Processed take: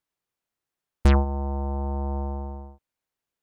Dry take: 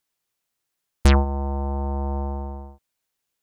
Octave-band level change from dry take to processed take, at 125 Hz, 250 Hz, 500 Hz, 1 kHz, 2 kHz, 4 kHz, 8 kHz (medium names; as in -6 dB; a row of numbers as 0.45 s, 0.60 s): -2.0 dB, -2.0 dB, -2.5 dB, -3.0 dB, -5.0 dB, -8.0 dB, -10.0 dB